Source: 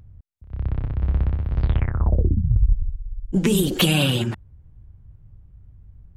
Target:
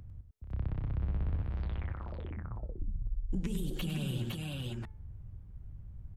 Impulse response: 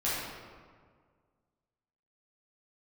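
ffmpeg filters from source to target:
-filter_complex "[0:a]acompressor=threshold=-30dB:ratio=3,bandreject=f=434.4:t=h:w=4,bandreject=f=868.8:t=h:w=4,bandreject=f=1.3032k:t=h:w=4,bandreject=f=1.7376k:t=h:w=4,bandreject=f=2.172k:t=h:w=4,bandreject=f=2.6064k:t=h:w=4,asettb=1/sr,asplit=3[a][b][c];[a]atrim=end=1.414[d];[b]atrim=start=1.41:end=2.79,asetpts=PTS-STARTPTS,afade=t=in:d=0.004:c=qsin,afade=t=out:st=1.376:d=0.004:c=qsin,lowshelf=f=310:g=-11.5[e];[c]atrim=start=2.786[f];[d][e]acrossfade=d=0.004:c1=hsin:c2=qsin[g];[g][f]acrossfade=d=0.004:c1=qsin:c2=hsin,aecho=1:1:99|508:0.335|0.668,acrossover=split=170[h][i];[i]acompressor=threshold=-40dB:ratio=4[j];[h][j]amix=inputs=2:normalize=0,volume=-2dB"

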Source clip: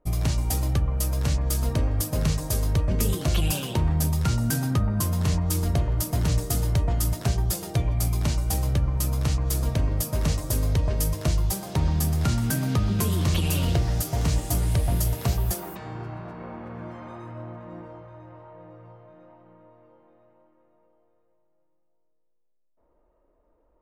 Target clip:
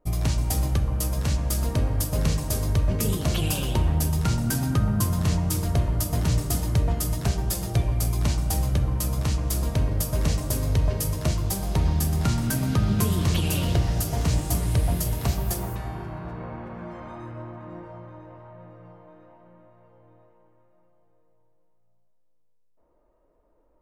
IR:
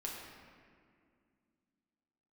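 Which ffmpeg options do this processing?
-filter_complex "[0:a]asplit=2[a][b];[1:a]atrim=start_sample=2205,asetrate=26019,aresample=44100[c];[b][c]afir=irnorm=-1:irlink=0,volume=-7.5dB[d];[a][d]amix=inputs=2:normalize=0,volume=-2.5dB"

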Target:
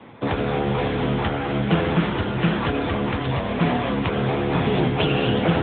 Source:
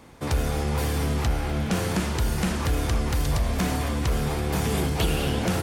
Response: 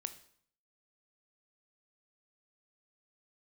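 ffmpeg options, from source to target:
-af "lowshelf=f=140:g=-6.5,afreqshift=-16,volume=8.5dB" -ar 8000 -c:a libopencore_amrnb -b:a 10200

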